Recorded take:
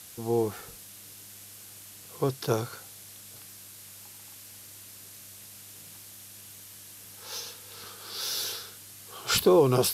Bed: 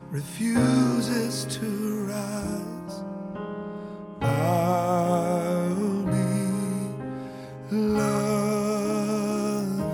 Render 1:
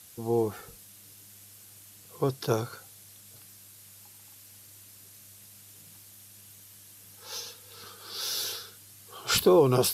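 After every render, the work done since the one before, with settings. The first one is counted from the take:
broadband denoise 6 dB, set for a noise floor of −48 dBFS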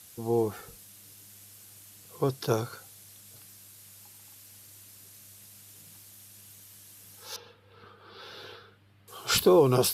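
0:07.36–0:09.08: high-frequency loss of the air 470 metres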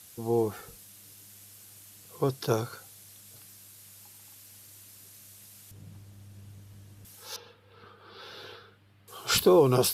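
0:05.71–0:07.05: spectral tilt −4 dB per octave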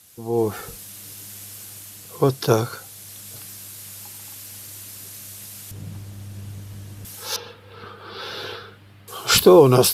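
automatic gain control gain up to 13 dB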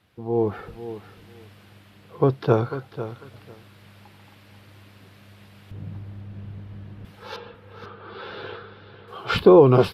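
high-frequency loss of the air 420 metres
repeating echo 495 ms, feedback 17%, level −12.5 dB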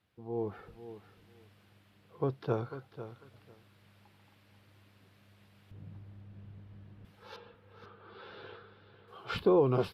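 level −13 dB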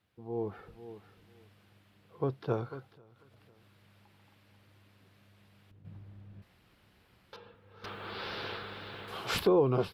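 0:02.88–0:05.85: downward compressor 4 to 1, threshold −57 dBFS
0:06.42–0:07.33: fill with room tone
0:07.84–0:09.47: every bin compressed towards the loudest bin 2 to 1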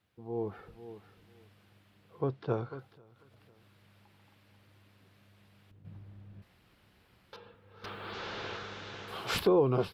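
0:02.21–0:02.79: high-frequency loss of the air 63 metres
0:08.13–0:09.08: linear delta modulator 32 kbit/s, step −46.5 dBFS

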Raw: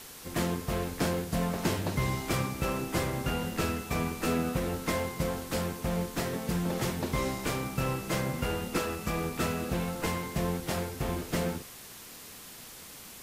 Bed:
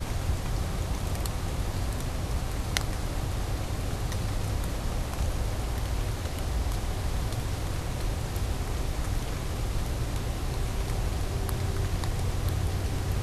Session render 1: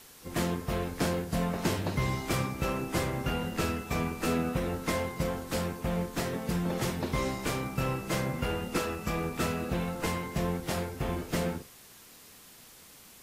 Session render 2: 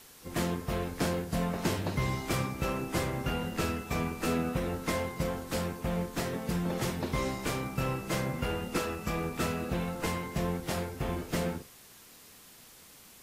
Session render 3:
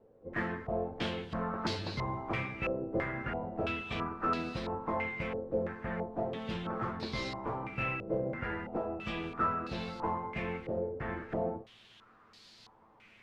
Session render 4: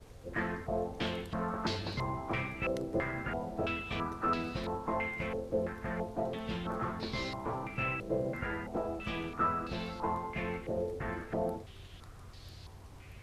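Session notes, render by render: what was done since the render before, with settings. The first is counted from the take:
noise reduction from a noise print 6 dB
level −1 dB
tuned comb filter 110 Hz, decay 0.16 s, harmonics all, mix 80%; low-pass on a step sequencer 3 Hz 520–4,400 Hz
mix in bed −22.5 dB

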